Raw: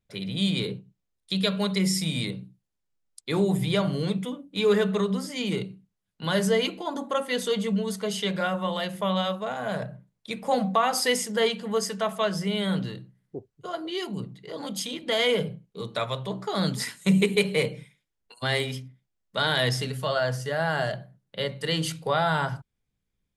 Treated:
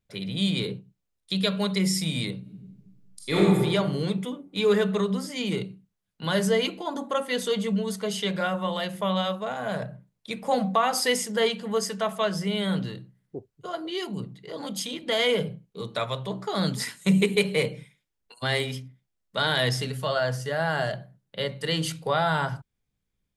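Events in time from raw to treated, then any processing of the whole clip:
2.41–3.41 s: reverb throw, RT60 1.4 s, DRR -6 dB

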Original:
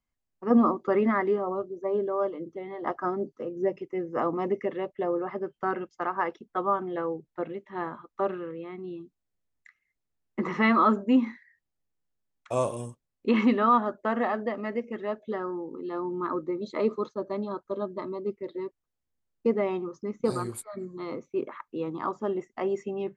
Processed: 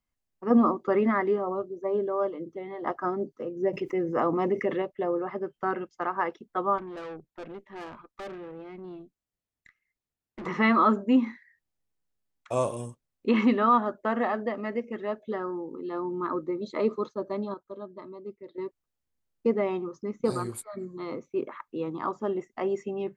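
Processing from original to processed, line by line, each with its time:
3.73–4.82 s: level flattener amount 50%
6.78–10.46 s: valve stage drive 36 dB, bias 0.55
17.54–18.58 s: gain -8.5 dB

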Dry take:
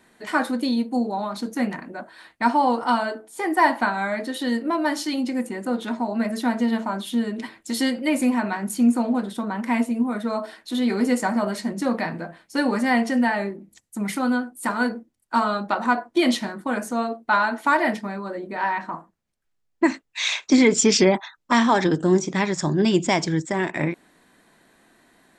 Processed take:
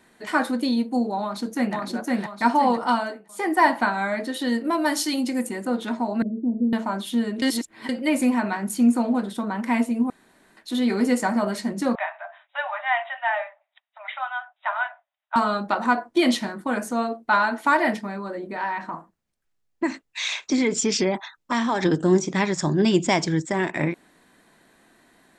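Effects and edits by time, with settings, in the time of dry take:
1.21–1.75 s: echo throw 510 ms, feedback 40%, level -0.5 dB
2.78–3.29 s: fade out equal-power, to -17 dB
4.64–5.63 s: treble shelf 6.4 kHz +11 dB
6.22–6.73 s: inverse Chebyshev low-pass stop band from 1.4 kHz, stop band 60 dB
7.42–7.89 s: reverse
10.10–10.57 s: room tone
11.95–15.36 s: brick-wall FIR band-pass 570–3900 Hz
17.97–21.83 s: compression 1.5:1, threshold -28 dBFS

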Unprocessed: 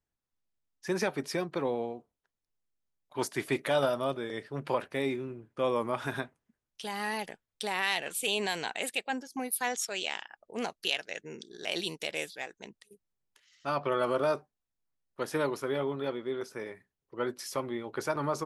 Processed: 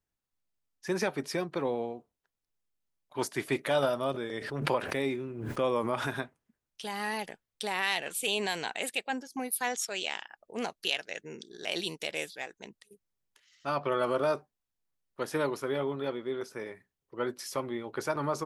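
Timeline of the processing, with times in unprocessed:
4.14–6.14 s: swell ahead of each attack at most 52 dB/s

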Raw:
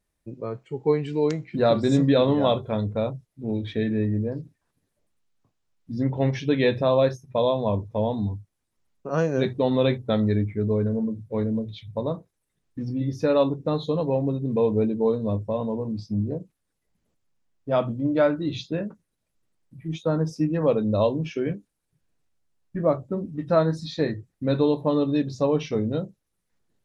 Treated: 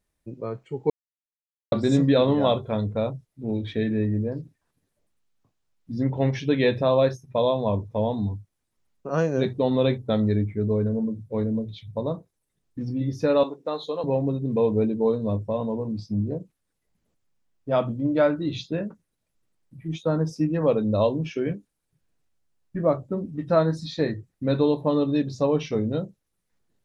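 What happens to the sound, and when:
0.90–1.72 s: mute
9.29–12.81 s: peaking EQ 1.9 kHz -3 dB 1.7 oct
13.43–14.04 s: high-pass 470 Hz

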